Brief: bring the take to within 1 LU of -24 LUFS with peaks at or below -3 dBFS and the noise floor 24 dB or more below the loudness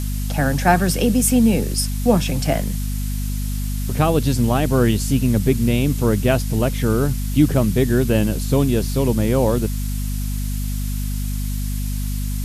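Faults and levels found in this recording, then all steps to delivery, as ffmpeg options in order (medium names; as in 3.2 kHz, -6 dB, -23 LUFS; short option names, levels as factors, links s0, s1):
hum 50 Hz; highest harmonic 250 Hz; hum level -21 dBFS; noise floor -23 dBFS; noise floor target -44 dBFS; loudness -20.0 LUFS; peak level -2.0 dBFS; loudness target -24.0 LUFS
-> -af "bandreject=f=50:t=h:w=4,bandreject=f=100:t=h:w=4,bandreject=f=150:t=h:w=4,bandreject=f=200:t=h:w=4,bandreject=f=250:t=h:w=4"
-af "afftdn=nr=21:nf=-23"
-af "volume=0.631"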